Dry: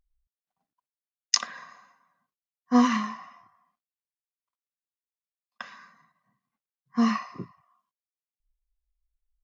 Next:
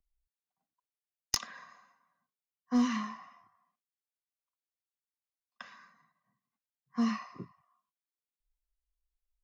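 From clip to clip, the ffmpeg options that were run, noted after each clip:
-filter_complex "[0:a]acrossover=split=280|340|2200[a][b][c][d];[c]alimiter=level_in=2dB:limit=-24dB:level=0:latency=1,volume=-2dB[e];[a][b][e][d]amix=inputs=4:normalize=0,aeval=exprs='clip(val(0),-1,0.178)':c=same,volume=-6.5dB"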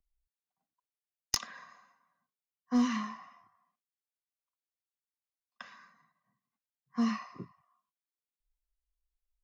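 -af anull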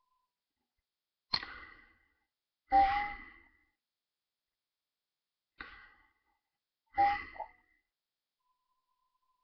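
-af "afftfilt=real='real(if(between(b,1,1008),(2*floor((b-1)/48)+1)*48-b,b),0)':imag='imag(if(between(b,1,1008),(2*floor((b-1)/48)+1)*48-b,b),0)*if(between(b,1,1008),-1,1)':win_size=2048:overlap=0.75,bandreject=f=244.9:t=h:w=4,bandreject=f=489.8:t=h:w=4,bandreject=f=734.7:t=h:w=4,bandreject=f=979.6:t=h:w=4,bandreject=f=1.2245k:t=h:w=4,bandreject=f=1.4694k:t=h:w=4,bandreject=f=1.7143k:t=h:w=4,bandreject=f=1.9592k:t=h:w=4,bandreject=f=2.2041k:t=h:w=4,bandreject=f=2.449k:t=h:w=4,bandreject=f=2.6939k:t=h:w=4,bandreject=f=2.9388k:t=h:w=4,bandreject=f=3.1837k:t=h:w=4,bandreject=f=3.4286k:t=h:w=4,bandreject=f=3.6735k:t=h:w=4,bandreject=f=3.9184k:t=h:w=4,bandreject=f=4.1633k:t=h:w=4,bandreject=f=4.4082k:t=h:w=4,bandreject=f=4.6531k:t=h:w=4,bandreject=f=4.898k:t=h:w=4,bandreject=f=5.1429k:t=h:w=4,bandreject=f=5.3878k:t=h:w=4,bandreject=f=5.6327k:t=h:w=4,bandreject=f=5.8776k:t=h:w=4,bandreject=f=6.1225k:t=h:w=4,bandreject=f=6.3674k:t=h:w=4,bandreject=f=6.6123k:t=h:w=4,bandreject=f=6.8572k:t=h:w=4,bandreject=f=7.1021k:t=h:w=4,bandreject=f=7.347k:t=h:w=4,bandreject=f=7.5919k:t=h:w=4,bandreject=f=7.8368k:t=h:w=4,bandreject=f=8.0817k:t=h:w=4,bandreject=f=8.3266k:t=h:w=4,bandreject=f=8.5715k:t=h:w=4,bandreject=f=8.8164k:t=h:w=4,bandreject=f=9.0613k:t=h:w=4,bandreject=f=9.3062k:t=h:w=4,volume=1dB" -ar 11025 -c:a nellymoser

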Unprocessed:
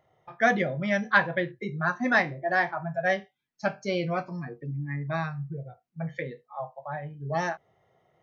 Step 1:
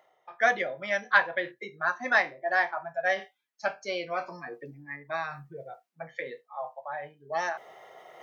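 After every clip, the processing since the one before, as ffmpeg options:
-af "highpass=540,areverse,acompressor=mode=upward:threshold=-33dB:ratio=2.5,areverse"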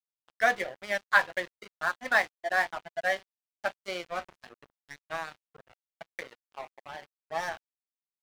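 -af "lowshelf=f=65:g=6.5,aeval=exprs='sgn(val(0))*max(abs(val(0))-0.0141,0)':c=same"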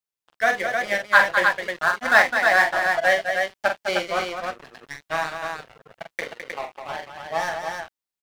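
-af "dynaudnorm=f=150:g=13:m=6dB,aecho=1:1:44|209|310:0.473|0.422|0.596,volume=3dB"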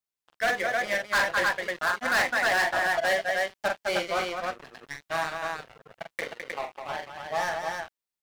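-af "asoftclip=type=hard:threshold=-18.5dB,volume=-2dB"

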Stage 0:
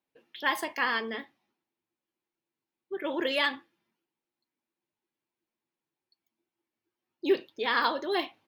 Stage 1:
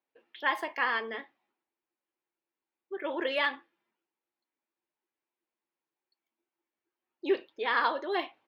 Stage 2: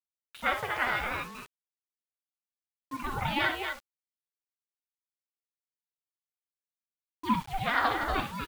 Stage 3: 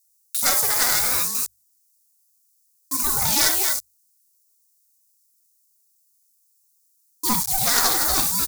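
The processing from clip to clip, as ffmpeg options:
-af "bass=f=250:g=-14,treble=f=4k:g=-14"
-filter_complex "[0:a]asplit=2[a][b];[b]aecho=0:1:61.22|239.1:0.398|0.501[c];[a][c]amix=inputs=2:normalize=0,acrusher=bits=7:mix=0:aa=0.000001,aeval=exprs='val(0)*sin(2*PI*440*n/s+440*0.55/0.7*sin(2*PI*0.7*n/s))':c=same,volume=2.5dB"
-af "aeval=exprs='clip(val(0),-1,0.0355)':c=same,bandreject=f=50:t=h:w=6,bandreject=f=100:t=h:w=6,aexciter=amount=14:drive=7.8:freq=4.6k,volume=4dB"

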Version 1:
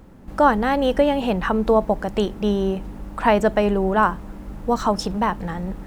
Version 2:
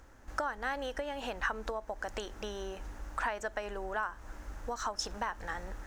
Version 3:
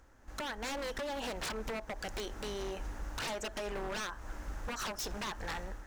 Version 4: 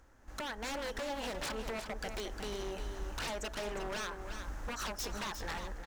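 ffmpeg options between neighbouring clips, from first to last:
-af "equalizer=f=190:w=1.4:g=-11.5,acompressor=threshold=-25dB:ratio=12,equalizer=f=160:t=o:w=0.67:g=-9,equalizer=f=400:t=o:w=0.67:g=-4,equalizer=f=1.6k:t=o:w=0.67:g=8,equalizer=f=6.3k:t=o:w=0.67:g=11,volume=-7.5dB"
-af "dynaudnorm=f=170:g=5:m=8dB,aeval=exprs='0.0422*(abs(mod(val(0)/0.0422+3,4)-2)-1)':c=same,volume=-5dB"
-af "aecho=1:1:356:0.398,volume=-1dB"

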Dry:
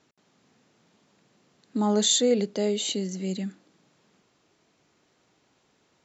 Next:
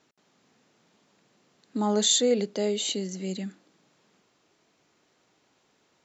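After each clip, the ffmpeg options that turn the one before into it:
-af "lowshelf=f=170:g=-6.5"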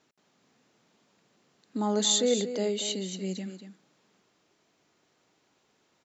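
-af "aecho=1:1:235:0.299,volume=-2.5dB"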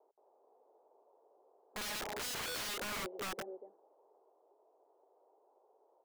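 -af "asoftclip=type=hard:threshold=-29.5dB,asuperpass=centerf=610:order=8:qfactor=1.1,aeval=exprs='(mod(119*val(0)+1,2)-1)/119':c=same,volume=6dB"

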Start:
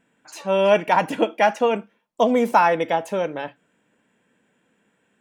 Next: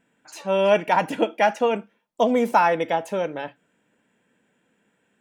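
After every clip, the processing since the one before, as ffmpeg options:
-af "bandreject=f=1.1k:w=16,volume=-1.5dB"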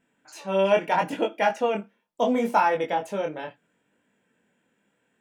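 -af "flanger=delay=20:depth=6:speed=0.74"

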